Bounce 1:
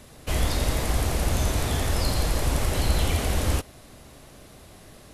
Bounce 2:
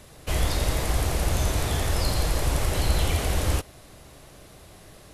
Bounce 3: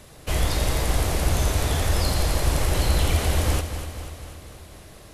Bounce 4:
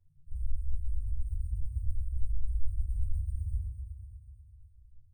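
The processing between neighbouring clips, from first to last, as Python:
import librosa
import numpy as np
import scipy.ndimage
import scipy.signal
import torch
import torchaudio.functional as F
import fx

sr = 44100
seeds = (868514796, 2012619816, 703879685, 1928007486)

y1 = fx.peak_eq(x, sr, hz=240.0, db=-7.0, octaves=0.27)
y2 = fx.echo_feedback(y1, sr, ms=245, feedback_pct=59, wet_db=-10.0)
y2 = y2 * 10.0 ** (1.5 / 20.0)
y3 = fx.spec_topn(y2, sr, count=1)
y3 = fx.sample_hold(y3, sr, seeds[0], rate_hz=8900.0, jitter_pct=0)
y3 = fx.room_shoebox(y3, sr, seeds[1], volume_m3=100.0, walls='mixed', distance_m=1.2)
y3 = y3 * 10.0 ** (-9.0 / 20.0)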